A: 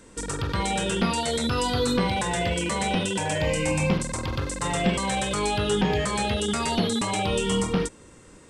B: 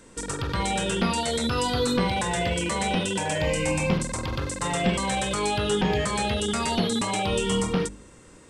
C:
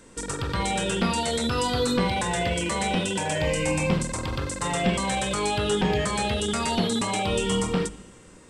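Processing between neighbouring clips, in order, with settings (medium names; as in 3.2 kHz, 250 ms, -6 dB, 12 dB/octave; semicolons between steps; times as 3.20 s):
de-hum 50.36 Hz, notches 9
Schroeder reverb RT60 1.5 s, combs from 26 ms, DRR 17.5 dB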